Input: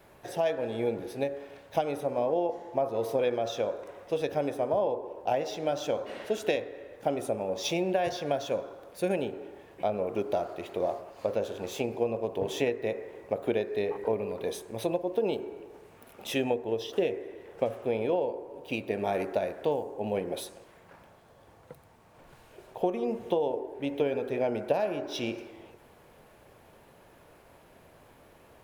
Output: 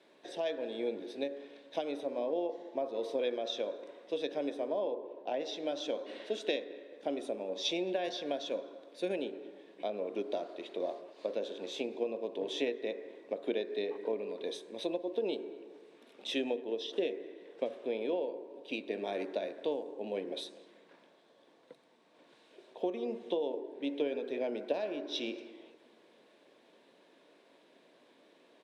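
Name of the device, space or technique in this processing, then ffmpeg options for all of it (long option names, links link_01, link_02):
television speaker: -filter_complex "[0:a]highpass=frequency=230:width=0.5412,highpass=frequency=230:width=1.3066,equalizer=frequency=290:width_type=q:width=4:gain=4,equalizer=frequency=810:width_type=q:width=4:gain=-7,equalizer=frequency=1300:width_type=q:width=4:gain=-7,equalizer=frequency=3700:width_type=q:width=4:gain=9,equalizer=frequency=6900:width_type=q:width=4:gain=-5,lowpass=frequency=8200:width=0.5412,lowpass=frequency=8200:width=1.3066,asettb=1/sr,asplit=3[link_01][link_02][link_03];[link_01]atrim=end=4.904[link_04];[link_02]atrim=start=4.9:end=5.4,asetpts=PTS-STARTPTS,afade=type=in:duration=0.004:curve=qsin,afade=type=out:start_time=0.496:duration=0.004:curve=qsin,aemphasis=mode=reproduction:type=50fm[link_05];[link_03]atrim=start=5.396[link_06];[link_04][link_05]acrossfade=duration=0.004:curve1=hsin:curve2=qsin[link_07];[link_07][link_06]acrossfade=duration=0.004:curve1=qsin:curve2=hsin,asplit=2[link_08][link_09];[link_09]adelay=218,lowpass=frequency=1400:poles=1,volume=-19.5dB,asplit=2[link_10][link_11];[link_11]adelay=218,lowpass=frequency=1400:poles=1,volume=0.51,asplit=2[link_12][link_13];[link_13]adelay=218,lowpass=frequency=1400:poles=1,volume=0.51,asplit=2[link_14][link_15];[link_15]adelay=218,lowpass=frequency=1400:poles=1,volume=0.51[link_16];[link_08][link_10][link_12][link_14][link_16]amix=inputs=5:normalize=0,volume=-5.5dB"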